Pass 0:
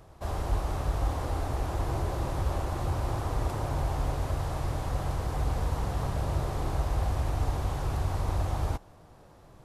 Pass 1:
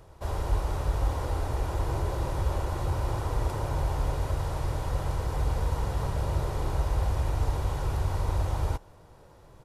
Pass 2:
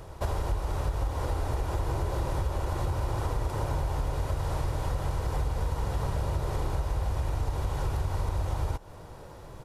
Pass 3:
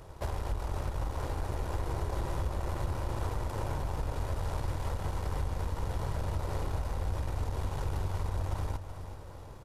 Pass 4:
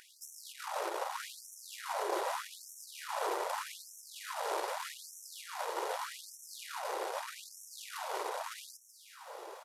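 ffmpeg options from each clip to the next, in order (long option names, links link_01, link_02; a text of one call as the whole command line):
ffmpeg -i in.wav -af "aecho=1:1:2.1:0.31" out.wav
ffmpeg -i in.wav -af "acompressor=threshold=-34dB:ratio=6,volume=8dB" out.wav
ffmpeg -i in.wav -af "aeval=exprs='0.141*(cos(1*acos(clip(val(0)/0.141,-1,1)))-cos(1*PI/2))+0.0112*(cos(8*acos(clip(val(0)/0.141,-1,1)))-cos(8*PI/2))':channel_layout=same,aecho=1:1:377|754|1131|1508|1885|2262:0.282|0.149|0.0792|0.042|0.0222|0.0118,volume=-5dB" out.wav
ffmpeg -i in.wav -af "afftfilt=real='re*gte(b*sr/1024,320*pow(5500/320,0.5+0.5*sin(2*PI*0.82*pts/sr)))':imag='im*gte(b*sr/1024,320*pow(5500/320,0.5+0.5*sin(2*PI*0.82*pts/sr)))':win_size=1024:overlap=0.75,volume=6.5dB" out.wav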